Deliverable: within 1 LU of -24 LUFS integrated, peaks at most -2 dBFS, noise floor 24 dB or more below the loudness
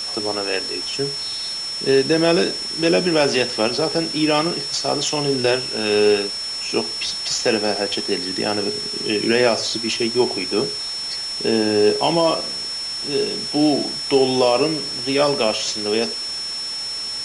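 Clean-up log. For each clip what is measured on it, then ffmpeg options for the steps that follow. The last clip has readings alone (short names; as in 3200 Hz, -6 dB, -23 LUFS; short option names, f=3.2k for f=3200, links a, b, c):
steady tone 5400 Hz; tone level -25 dBFS; noise floor -28 dBFS; noise floor target -44 dBFS; loudness -19.5 LUFS; peak -4.5 dBFS; loudness target -24.0 LUFS
-> -af "bandreject=f=5.4k:w=30"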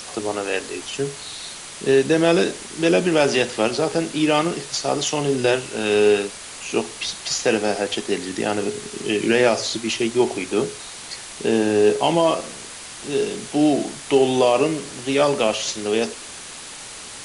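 steady tone none; noise floor -37 dBFS; noise floor target -45 dBFS
-> -af "afftdn=nr=8:nf=-37"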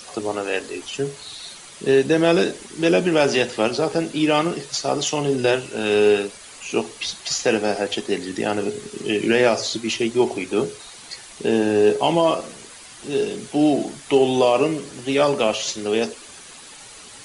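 noise floor -42 dBFS; noise floor target -45 dBFS
-> -af "afftdn=nr=6:nf=-42"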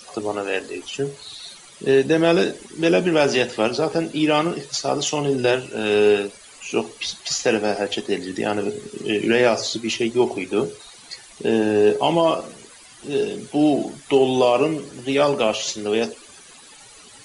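noise floor -46 dBFS; loudness -21.0 LUFS; peak -5.5 dBFS; loudness target -24.0 LUFS
-> -af "volume=-3dB"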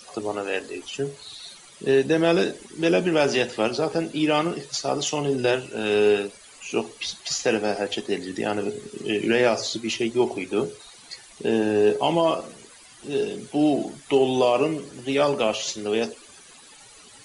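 loudness -24.0 LUFS; peak -8.5 dBFS; noise floor -49 dBFS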